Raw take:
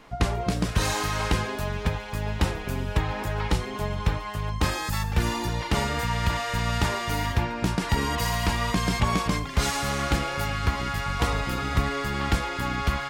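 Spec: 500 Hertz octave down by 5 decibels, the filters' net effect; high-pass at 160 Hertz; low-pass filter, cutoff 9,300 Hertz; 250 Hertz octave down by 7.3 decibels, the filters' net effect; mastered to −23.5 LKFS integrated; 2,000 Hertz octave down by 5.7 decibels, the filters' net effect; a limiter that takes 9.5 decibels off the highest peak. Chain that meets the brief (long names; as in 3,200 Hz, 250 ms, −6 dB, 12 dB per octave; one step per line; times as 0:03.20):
high-pass filter 160 Hz
low-pass filter 9,300 Hz
parametric band 250 Hz −7.5 dB
parametric band 500 Hz −4 dB
parametric band 2,000 Hz −7 dB
level +11 dB
brickwall limiter −13.5 dBFS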